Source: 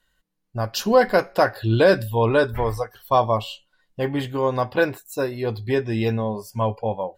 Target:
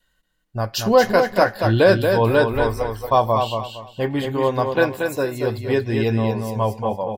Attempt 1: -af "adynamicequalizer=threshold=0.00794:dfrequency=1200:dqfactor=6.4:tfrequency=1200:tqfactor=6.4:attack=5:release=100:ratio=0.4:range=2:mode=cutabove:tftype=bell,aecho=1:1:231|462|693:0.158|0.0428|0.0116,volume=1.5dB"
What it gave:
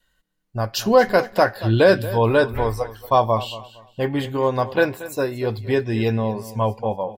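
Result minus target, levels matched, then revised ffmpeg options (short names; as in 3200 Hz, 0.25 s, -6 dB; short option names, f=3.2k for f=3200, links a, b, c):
echo-to-direct -10.5 dB
-af "adynamicequalizer=threshold=0.00794:dfrequency=1200:dqfactor=6.4:tfrequency=1200:tqfactor=6.4:attack=5:release=100:ratio=0.4:range=2:mode=cutabove:tftype=bell,aecho=1:1:231|462|693|924:0.531|0.143|0.0387|0.0104,volume=1.5dB"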